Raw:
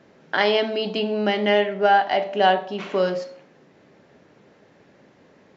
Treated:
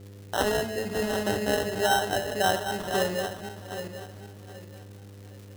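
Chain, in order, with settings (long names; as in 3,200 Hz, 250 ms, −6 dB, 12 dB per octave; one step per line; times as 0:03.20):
feedback delay that plays each chunk backwards 388 ms, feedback 53%, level −6 dB
decimation without filtering 19×
surface crackle 350 per second −35 dBFS
hum with harmonics 100 Hz, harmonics 5, −44 dBFS −2 dB per octave
parametric band 90 Hz +10 dB 0.85 octaves
level −7 dB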